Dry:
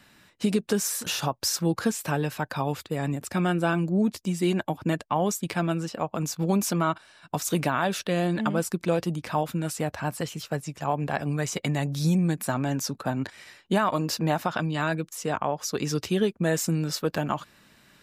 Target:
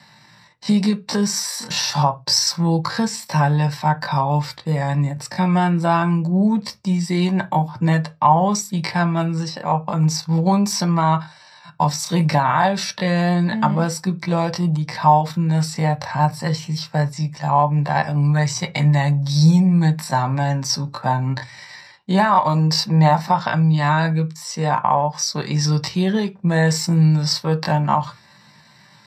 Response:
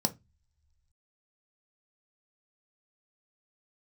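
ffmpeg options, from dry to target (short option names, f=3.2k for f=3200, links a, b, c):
-filter_complex "[0:a]equalizer=f=125:t=o:w=1:g=7,equalizer=f=250:t=o:w=1:g=-11,equalizer=f=1k:t=o:w=1:g=7,equalizer=f=2k:t=o:w=1:g=10,equalizer=f=4k:t=o:w=1:g=8,atempo=0.62[a];[1:a]atrim=start_sample=2205,afade=t=out:st=0.26:d=0.01,atrim=end_sample=11907[b];[a][b]afir=irnorm=-1:irlink=0,volume=-5.5dB"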